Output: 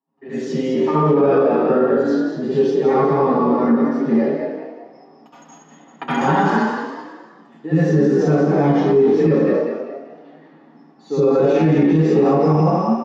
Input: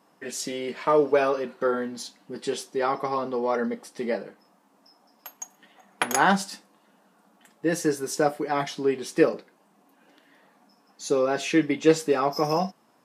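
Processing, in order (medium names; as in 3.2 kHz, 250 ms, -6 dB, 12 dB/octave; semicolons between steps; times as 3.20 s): 6.15–8.36 s: block-companded coder 5-bit; low-pass 6.7 kHz 12 dB/octave; gate with hold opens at -52 dBFS; high-pass 210 Hz 6 dB/octave; tilt EQ -4 dB/octave; comb 7.4 ms, depth 75%; frequency-shifting echo 195 ms, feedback 42%, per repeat +40 Hz, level -6 dB; reverberation RT60 0.70 s, pre-delay 65 ms, DRR -12 dB; loudness maximiser -9 dB; trim -6 dB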